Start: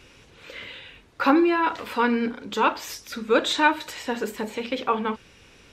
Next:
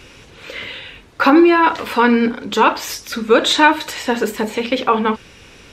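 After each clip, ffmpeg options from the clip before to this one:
-af "alimiter=level_in=3.35:limit=0.891:release=50:level=0:latency=1,volume=0.891"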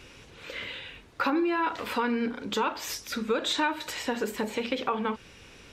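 -af "acompressor=threshold=0.126:ratio=3,volume=0.398"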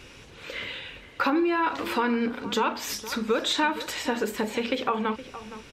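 -filter_complex "[0:a]asplit=2[s0][s1];[s1]adelay=466.5,volume=0.2,highshelf=f=4000:g=-10.5[s2];[s0][s2]amix=inputs=2:normalize=0,volume=1.33"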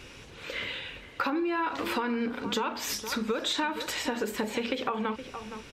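-af "acompressor=threshold=0.0501:ratio=6"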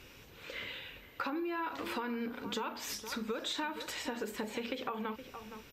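-af "aeval=exprs='val(0)+0.001*sin(2*PI*14000*n/s)':c=same,volume=0.422"

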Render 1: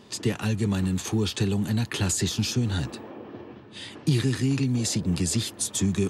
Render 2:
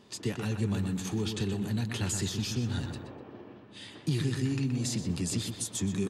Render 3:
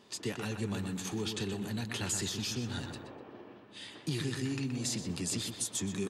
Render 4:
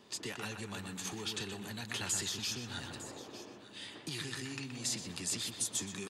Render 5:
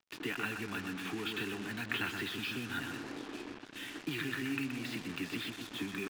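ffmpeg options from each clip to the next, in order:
-filter_complex "[0:a]asplit=2[s0][s1];[s1]adelay=124,lowpass=f=3000:p=1,volume=0.501,asplit=2[s2][s3];[s3]adelay=124,lowpass=f=3000:p=1,volume=0.45,asplit=2[s4][s5];[s5]adelay=124,lowpass=f=3000:p=1,volume=0.45,asplit=2[s6][s7];[s7]adelay=124,lowpass=f=3000:p=1,volume=0.45,asplit=2[s8][s9];[s9]adelay=124,lowpass=f=3000:p=1,volume=0.45[s10];[s0][s2][s4][s6][s8][s10]amix=inputs=6:normalize=0,volume=0.447"
-af "lowshelf=f=220:g=-9.5"
-filter_complex "[0:a]acrossover=split=670|1100[s0][s1][s2];[s0]acompressor=threshold=0.00631:ratio=4[s3];[s2]aecho=1:1:904:0.178[s4];[s3][s1][s4]amix=inputs=3:normalize=0"
-af "highpass=130,equalizer=f=190:t=q:w=4:g=-3,equalizer=f=290:t=q:w=4:g=8,equalizer=f=560:t=q:w=4:g=-9,equalizer=f=880:t=q:w=4:g=-4,equalizer=f=1500:t=q:w=4:g=6,equalizer=f=2500:t=q:w=4:g=4,lowpass=f=3100:w=0.5412,lowpass=f=3100:w=1.3066,acrusher=bits=7:mix=0:aa=0.5,volume=1.5"

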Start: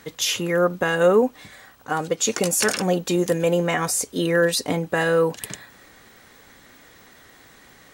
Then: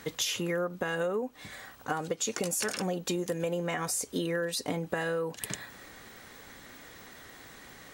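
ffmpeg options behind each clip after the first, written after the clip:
-af "acompressor=threshold=0.0398:ratio=12"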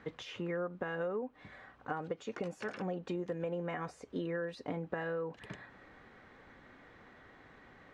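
-af "lowpass=2000,volume=0.531"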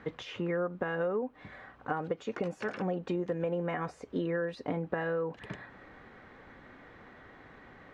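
-af "highshelf=f=4500:g=-7.5,volume=1.78"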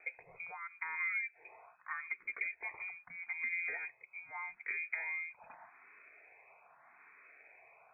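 -filter_complex "[0:a]lowpass=f=2200:t=q:w=0.5098,lowpass=f=2200:t=q:w=0.6013,lowpass=f=2200:t=q:w=0.9,lowpass=f=2200:t=q:w=2.563,afreqshift=-2600,asplit=2[s0][s1];[s1]afreqshift=0.81[s2];[s0][s2]amix=inputs=2:normalize=1,volume=0.562"

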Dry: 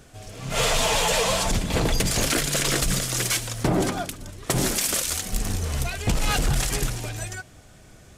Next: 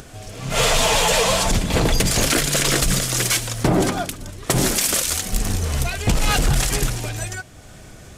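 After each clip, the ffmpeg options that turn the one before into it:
-af "acompressor=mode=upward:threshold=0.0112:ratio=2.5,volume=1.68"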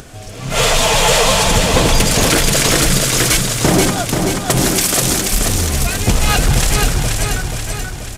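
-af "aecho=1:1:482|964|1446|1928|2410|2892|3374:0.631|0.341|0.184|0.0994|0.0537|0.029|0.0156,volume=1.58"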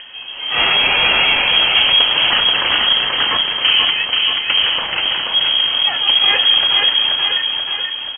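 -filter_complex "[0:a]asoftclip=type=tanh:threshold=0.447,asplit=2[s0][s1];[s1]adelay=33,volume=0.266[s2];[s0][s2]amix=inputs=2:normalize=0,lowpass=f=2800:t=q:w=0.5098,lowpass=f=2800:t=q:w=0.6013,lowpass=f=2800:t=q:w=0.9,lowpass=f=2800:t=q:w=2.563,afreqshift=-3300,volume=1.12"

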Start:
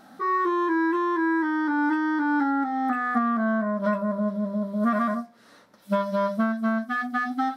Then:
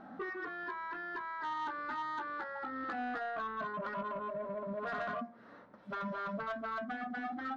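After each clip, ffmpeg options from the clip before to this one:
-af "afftfilt=real='re*lt(hypot(re,im),0.224)':imag='im*lt(hypot(re,im),0.224)':win_size=1024:overlap=0.75,lowpass=1600,asoftclip=type=tanh:threshold=0.0266"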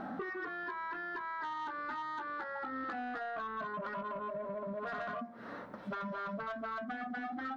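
-af "acompressor=threshold=0.00355:ratio=6,volume=3.35"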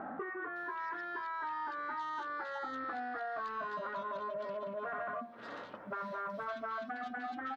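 -filter_complex "[0:a]highpass=72,equalizer=f=180:t=o:w=1.3:g=-9,acrossover=split=2300[s0][s1];[s1]adelay=560[s2];[s0][s2]amix=inputs=2:normalize=0,volume=1.19"

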